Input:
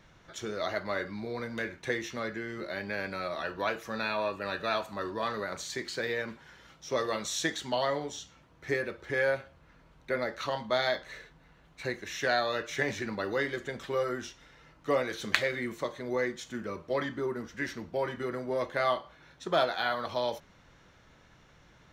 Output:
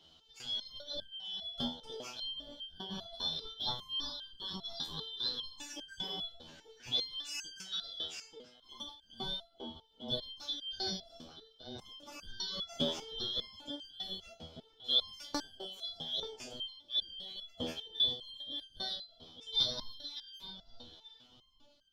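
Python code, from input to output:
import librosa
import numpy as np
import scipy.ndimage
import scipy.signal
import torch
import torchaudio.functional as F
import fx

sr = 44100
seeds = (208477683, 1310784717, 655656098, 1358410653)

y = fx.band_shuffle(x, sr, order='2413')
y = fx.echo_filtered(y, sr, ms=883, feedback_pct=24, hz=1000.0, wet_db=-7.0)
y = fx.resonator_held(y, sr, hz=5.0, low_hz=81.0, high_hz=1600.0)
y = F.gain(torch.from_numpy(y), 6.0).numpy()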